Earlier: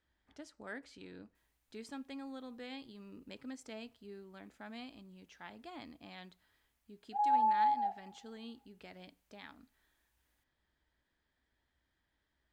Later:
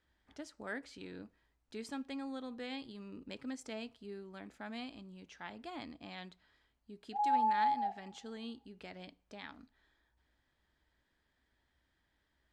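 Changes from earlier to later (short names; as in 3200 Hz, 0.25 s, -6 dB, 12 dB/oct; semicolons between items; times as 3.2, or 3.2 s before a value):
speech +3.5 dB; background: add LPF 1100 Hz 12 dB/oct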